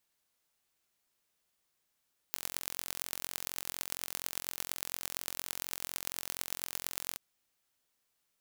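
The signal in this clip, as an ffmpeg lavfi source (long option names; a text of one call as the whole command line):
ffmpeg -f lavfi -i "aevalsrc='0.473*eq(mod(n,998),0)*(0.5+0.5*eq(mod(n,4990),0))':duration=4.84:sample_rate=44100" out.wav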